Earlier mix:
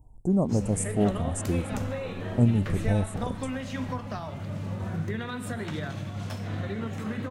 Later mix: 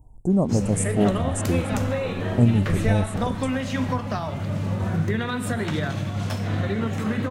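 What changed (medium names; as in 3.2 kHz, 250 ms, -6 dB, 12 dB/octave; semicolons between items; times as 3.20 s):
speech +3.5 dB; background +7.5 dB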